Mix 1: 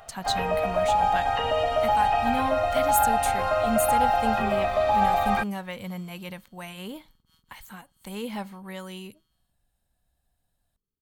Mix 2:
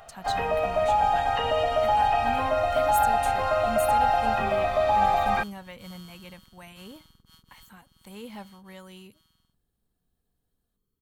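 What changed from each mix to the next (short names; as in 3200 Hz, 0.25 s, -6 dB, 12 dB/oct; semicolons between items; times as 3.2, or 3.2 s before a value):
speech -7.5 dB; second sound +9.0 dB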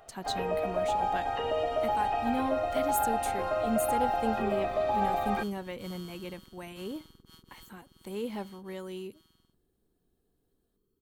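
first sound -9.0 dB; master: add bell 360 Hz +13 dB 0.93 oct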